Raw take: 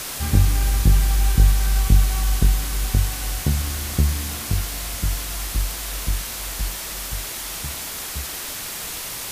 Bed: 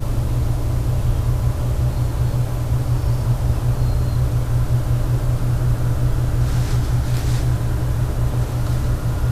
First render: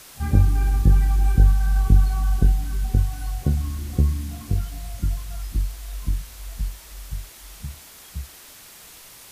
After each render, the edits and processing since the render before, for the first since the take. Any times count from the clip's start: noise print and reduce 14 dB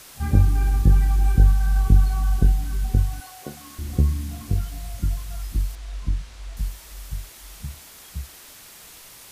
3.2–3.79 HPF 410 Hz; 5.75–6.57 air absorption 76 m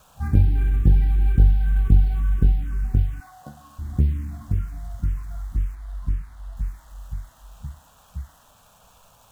median filter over 9 samples; envelope phaser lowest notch 340 Hz, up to 1200 Hz, full sweep at -13 dBFS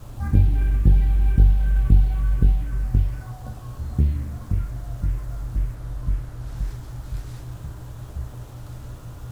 add bed -17 dB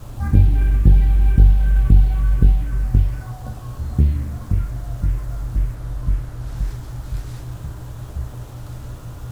gain +4 dB; limiter -1 dBFS, peak gain reduction 1.5 dB

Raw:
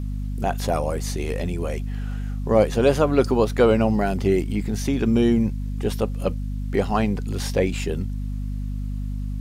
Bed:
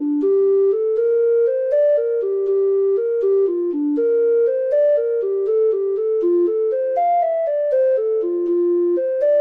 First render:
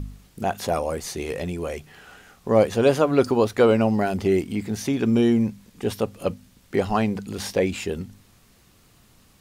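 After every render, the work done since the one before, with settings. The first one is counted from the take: de-hum 50 Hz, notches 5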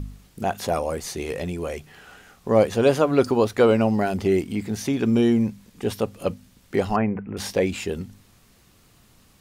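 6.96–7.37 steep low-pass 2400 Hz 48 dB/oct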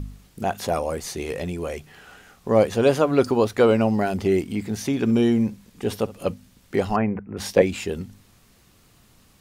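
4.91–6.31 flutter echo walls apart 11.4 m, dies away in 0.21 s; 7.19–7.62 three-band expander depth 70%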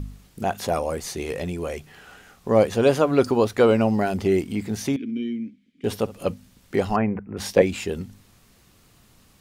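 4.96–5.84 vowel filter i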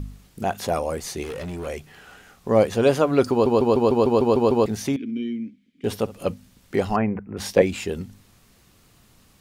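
1.23–1.67 hard clip -28.5 dBFS; 3.31 stutter in place 0.15 s, 9 plays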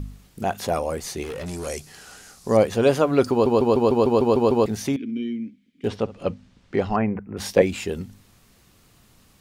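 1.46–2.57 band shelf 7000 Hz +12.5 dB; 5.88–7.01 air absorption 120 m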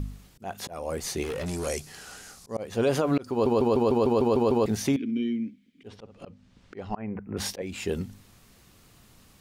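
auto swell 0.388 s; limiter -15 dBFS, peak gain reduction 9.5 dB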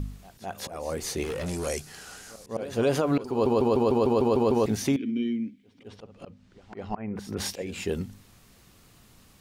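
reverse echo 0.21 s -16.5 dB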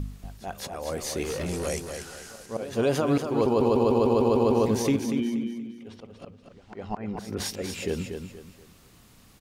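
feedback echo 0.238 s, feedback 33%, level -7 dB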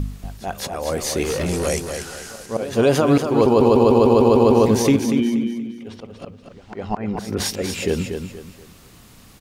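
gain +8 dB

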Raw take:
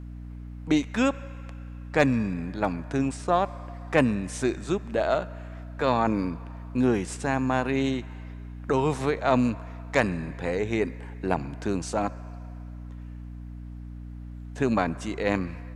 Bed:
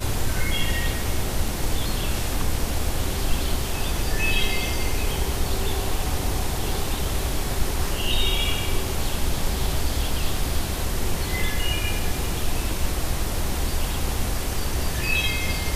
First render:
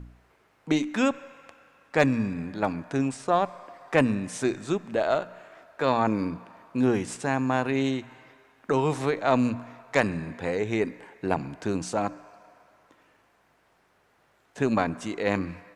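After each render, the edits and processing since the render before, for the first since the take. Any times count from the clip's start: de-hum 60 Hz, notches 5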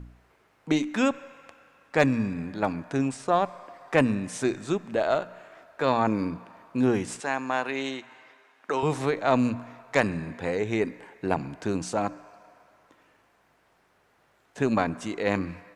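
7.2–8.83 weighting filter A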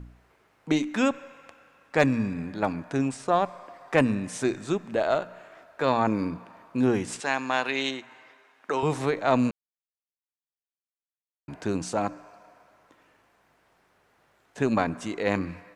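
7.12–7.91 dynamic EQ 3800 Hz, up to +8 dB, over -47 dBFS, Q 0.79; 9.51–11.48 mute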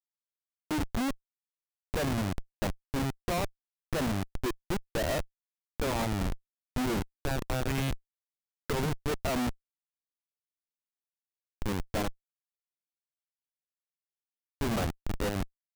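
Schmitt trigger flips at -25 dBFS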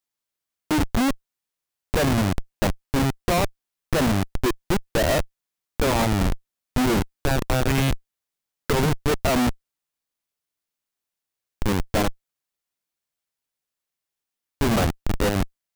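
gain +9.5 dB

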